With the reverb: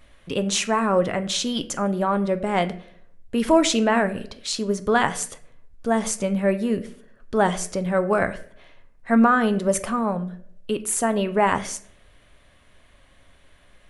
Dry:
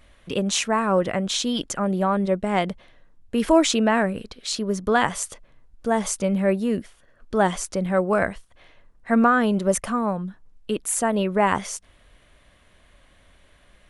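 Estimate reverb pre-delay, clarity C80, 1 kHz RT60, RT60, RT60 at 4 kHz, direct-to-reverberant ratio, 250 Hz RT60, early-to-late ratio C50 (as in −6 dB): 7 ms, 19.0 dB, 0.55 s, 0.65 s, 0.40 s, 9.5 dB, 0.65 s, 16.0 dB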